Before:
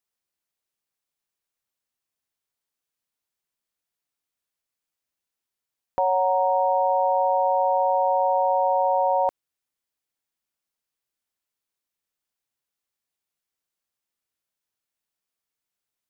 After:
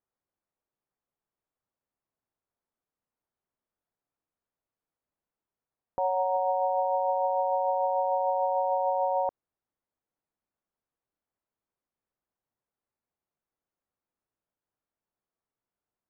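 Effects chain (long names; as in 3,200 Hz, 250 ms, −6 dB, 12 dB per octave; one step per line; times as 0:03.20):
0:06.36–0:06.85: dynamic equaliser 680 Hz, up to +3 dB, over −36 dBFS
brickwall limiter −22.5 dBFS, peak gain reduction 11 dB
low-pass filter 1,100 Hz 12 dB per octave
level +3.5 dB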